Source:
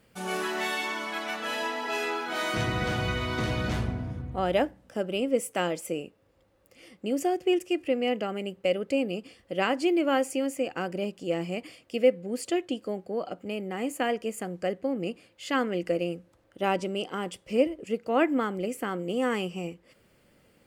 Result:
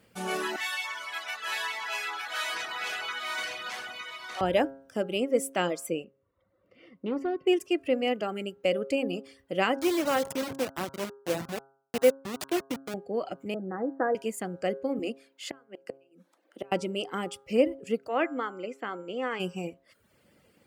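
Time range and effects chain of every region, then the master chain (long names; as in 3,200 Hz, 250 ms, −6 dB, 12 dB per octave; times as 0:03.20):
0:00.56–0:04.41: high-pass filter 1,100 Hz + single-tap delay 911 ms −4 dB
0:06.04–0:07.47: notch comb filter 830 Hz + hard clipping −25 dBFS + high-frequency loss of the air 330 metres
0:09.79–0:12.94: hold until the input has moved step −26.5 dBFS + high-pass filter 220 Hz 6 dB per octave
0:13.54–0:14.15: Butterworth low-pass 1,700 Hz 72 dB per octave + comb filter 6.1 ms, depth 35%
0:14.99–0:16.72: Butterworth high-pass 200 Hz 48 dB per octave + gate with flip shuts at −22 dBFS, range −30 dB
0:18.07–0:19.39: high-pass filter 610 Hz 6 dB per octave + steady tone 7,300 Hz −56 dBFS + high-frequency loss of the air 190 metres
whole clip: high-pass filter 67 Hz; reverb reduction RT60 0.72 s; hum removal 135.7 Hz, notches 12; level +1 dB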